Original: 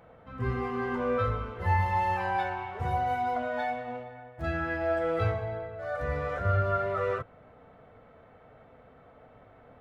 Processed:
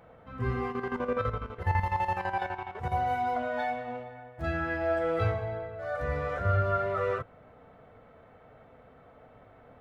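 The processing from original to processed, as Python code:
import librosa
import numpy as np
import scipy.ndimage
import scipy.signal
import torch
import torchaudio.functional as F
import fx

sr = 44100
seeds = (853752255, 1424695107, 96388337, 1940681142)

y = fx.chopper(x, sr, hz=12.0, depth_pct=65, duty_pct=55, at=(0.71, 2.92), fade=0.02)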